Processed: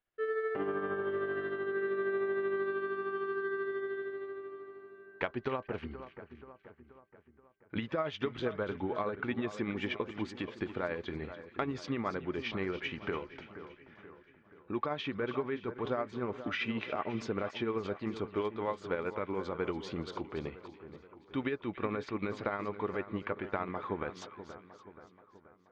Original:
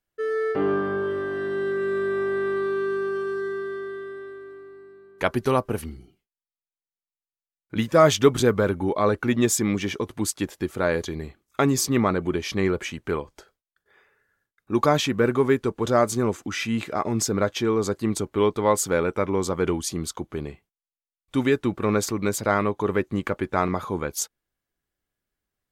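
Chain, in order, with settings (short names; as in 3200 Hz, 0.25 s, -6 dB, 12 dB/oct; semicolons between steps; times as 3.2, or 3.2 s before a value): LPF 3300 Hz 24 dB/oct; low shelf 300 Hz -7.5 dB; compressor 5:1, threshold -30 dBFS, peak gain reduction 16.5 dB; tremolo 13 Hz, depth 45%; split-band echo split 1900 Hz, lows 0.479 s, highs 0.285 s, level -12 dB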